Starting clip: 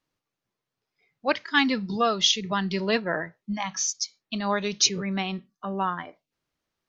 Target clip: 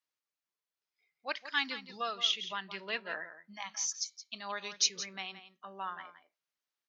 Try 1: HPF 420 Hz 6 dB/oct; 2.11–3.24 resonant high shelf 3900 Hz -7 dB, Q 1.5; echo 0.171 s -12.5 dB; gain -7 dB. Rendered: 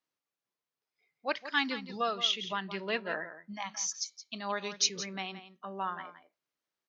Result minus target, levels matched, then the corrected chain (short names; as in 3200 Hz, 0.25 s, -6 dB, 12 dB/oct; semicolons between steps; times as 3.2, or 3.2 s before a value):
500 Hz band +6.0 dB
HPF 1500 Hz 6 dB/oct; 2.11–3.24 resonant high shelf 3900 Hz -7 dB, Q 1.5; echo 0.171 s -12.5 dB; gain -7 dB